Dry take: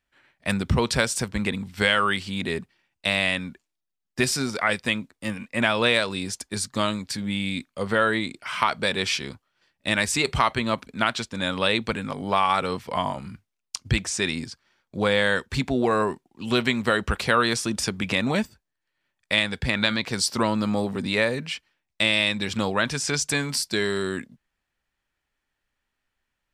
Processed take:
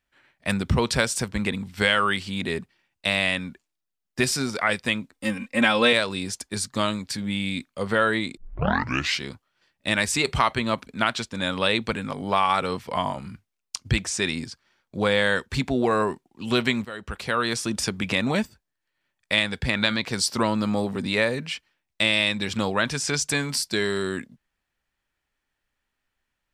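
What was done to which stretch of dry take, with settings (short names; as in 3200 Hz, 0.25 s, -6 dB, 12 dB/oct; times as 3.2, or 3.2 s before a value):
5.12–5.93 comb 3.8 ms, depth 81%
8.37 tape start 0.85 s
16.85–17.75 fade in, from -18.5 dB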